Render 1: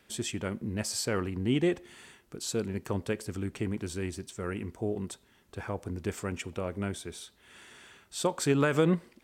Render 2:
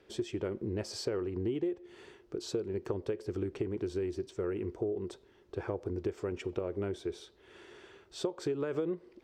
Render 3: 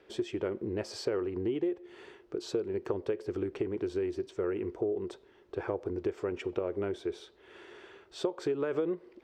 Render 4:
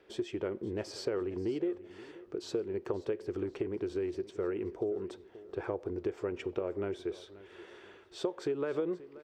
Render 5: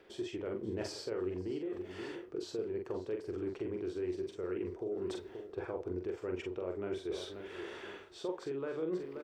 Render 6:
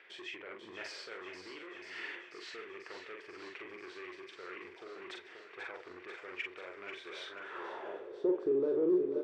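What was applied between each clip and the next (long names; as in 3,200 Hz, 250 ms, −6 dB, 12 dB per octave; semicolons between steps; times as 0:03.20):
drawn EQ curve 110 Hz 0 dB, 170 Hz −4 dB, 240 Hz −5 dB, 360 Hz +11 dB, 660 Hz +1 dB, 2,000 Hz −5 dB, 5,300 Hz −5 dB, 8,800 Hz −17 dB; downward compressor 12 to 1, threshold −30 dBFS, peak gain reduction 17 dB
bass and treble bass −7 dB, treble −7 dB; level +3.5 dB
repeating echo 531 ms, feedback 41%, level −18 dB; level −2 dB
reversed playback; downward compressor 6 to 1, threshold −42 dBFS, peak gain reduction 15 dB; reversed playback; double-tracking delay 44 ms −4 dB; level +5.5 dB
soft clipping −33.5 dBFS, distortion −15 dB; feedback echo with a high-pass in the loop 489 ms, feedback 78%, high-pass 780 Hz, level −8 dB; band-pass filter sweep 2,100 Hz → 380 Hz, 0:07.19–0:08.25; level +12 dB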